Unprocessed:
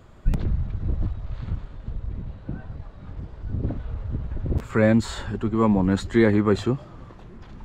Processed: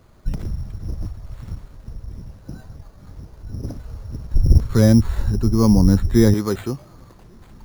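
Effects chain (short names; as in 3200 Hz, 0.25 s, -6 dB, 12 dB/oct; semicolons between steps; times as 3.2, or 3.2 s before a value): 4.34–6.34 RIAA curve playback; careless resampling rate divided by 8×, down none, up hold; gain -2.5 dB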